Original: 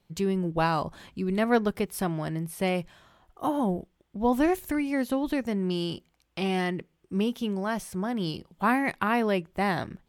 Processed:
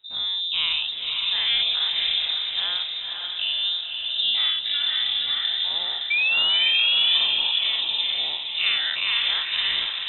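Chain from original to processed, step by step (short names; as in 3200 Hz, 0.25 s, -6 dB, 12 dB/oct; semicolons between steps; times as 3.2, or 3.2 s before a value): spectral dilation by 0.12 s; low shelf 270 Hz +6.5 dB; painted sound fall, 6.1–7.17, 340–1500 Hz -16 dBFS; diffused feedback echo 0.533 s, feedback 50%, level -3.5 dB; inverted band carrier 3800 Hz; gain -5.5 dB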